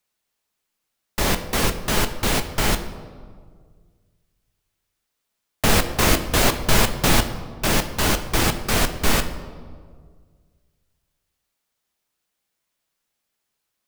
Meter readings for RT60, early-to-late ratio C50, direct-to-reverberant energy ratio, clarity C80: 1.8 s, 11.0 dB, 7.5 dB, 12.5 dB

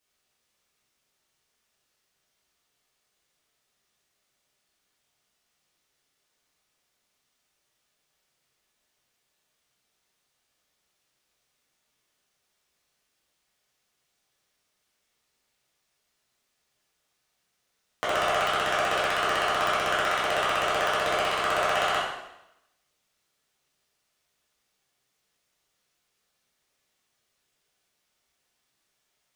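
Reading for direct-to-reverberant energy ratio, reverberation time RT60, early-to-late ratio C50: -9.5 dB, 0.90 s, 0.5 dB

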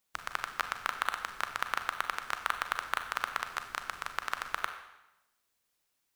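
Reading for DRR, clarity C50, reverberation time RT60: 7.0 dB, 9.0 dB, 0.95 s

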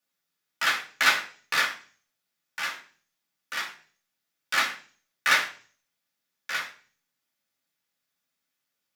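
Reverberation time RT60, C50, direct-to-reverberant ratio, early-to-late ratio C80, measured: 0.45 s, 12.0 dB, -3.0 dB, 16.0 dB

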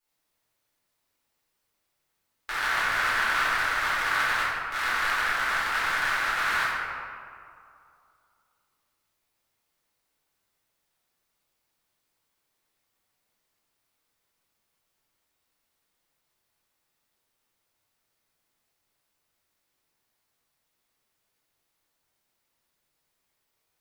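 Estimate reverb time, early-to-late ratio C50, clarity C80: 2.5 s, -3.0 dB, -1.0 dB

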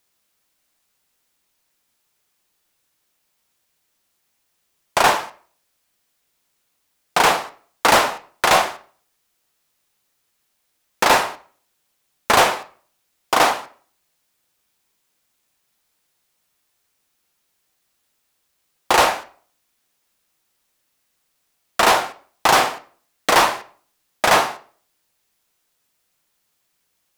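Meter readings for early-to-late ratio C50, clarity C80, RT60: 15.5 dB, 20.0 dB, 0.45 s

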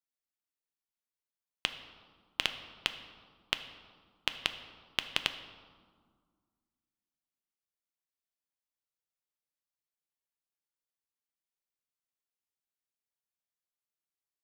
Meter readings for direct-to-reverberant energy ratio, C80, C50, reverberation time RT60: 8.5 dB, 12.5 dB, 11.0 dB, 1.8 s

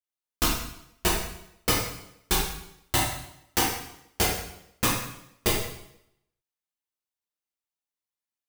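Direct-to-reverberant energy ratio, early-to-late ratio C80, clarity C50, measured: -6.5 dB, 5.5 dB, 1.5 dB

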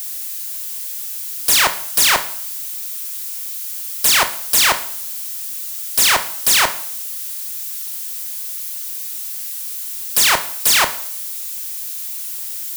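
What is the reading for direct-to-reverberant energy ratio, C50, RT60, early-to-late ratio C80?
9.0 dB, 13.5 dB, 0.55 s, 17.0 dB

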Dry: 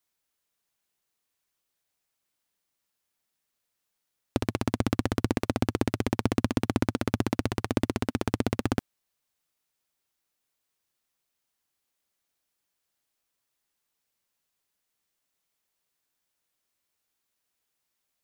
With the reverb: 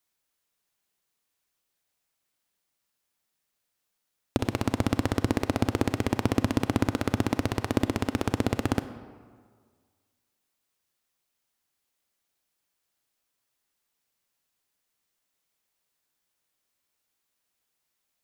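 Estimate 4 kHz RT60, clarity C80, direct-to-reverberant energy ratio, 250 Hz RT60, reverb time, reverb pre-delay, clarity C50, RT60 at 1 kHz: 1.0 s, 13.0 dB, 11.0 dB, 1.6 s, 1.8 s, 29 ms, 12.0 dB, 1.8 s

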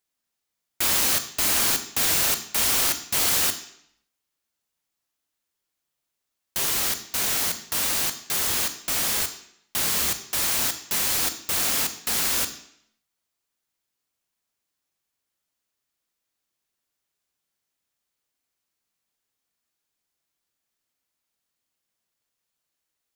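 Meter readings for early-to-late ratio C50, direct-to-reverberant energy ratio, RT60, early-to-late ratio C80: 12.0 dB, 9.0 dB, 0.70 s, 14.0 dB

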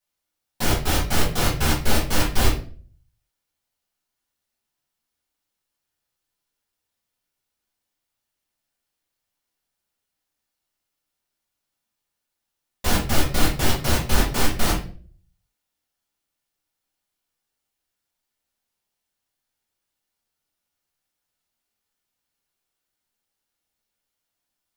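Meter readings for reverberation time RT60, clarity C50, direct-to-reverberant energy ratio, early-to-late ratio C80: 0.45 s, 6.0 dB, -7.5 dB, 12.0 dB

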